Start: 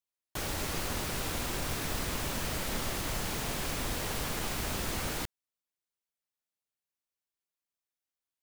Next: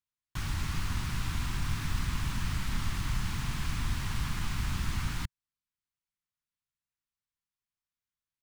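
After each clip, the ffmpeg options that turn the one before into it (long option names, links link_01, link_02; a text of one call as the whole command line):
ffmpeg -i in.wav -af "firequalizer=gain_entry='entry(120,0);entry(500,-28);entry(1000,-8);entry(14000,-19)':delay=0.05:min_phase=1,volume=7dB" out.wav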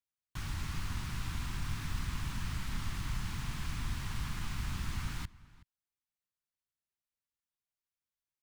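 ffmpeg -i in.wav -filter_complex "[0:a]asplit=2[link_01][link_02];[link_02]adelay=373.2,volume=-20dB,highshelf=frequency=4000:gain=-8.4[link_03];[link_01][link_03]amix=inputs=2:normalize=0,volume=-5dB" out.wav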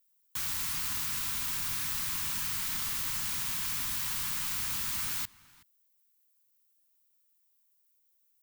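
ffmpeg -i in.wav -af "aemphasis=mode=production:type=riaa,volume=2dB" out.wav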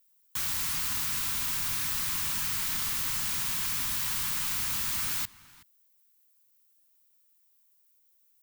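ffmpeg -i in.wav -af "asoftclip=type=tanh:threshold=-28dB,volume=4.5dB" out.wav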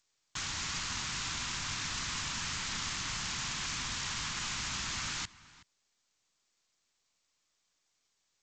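ffmpeg -i in.wav -ar 16000 -c:a g722 out.g722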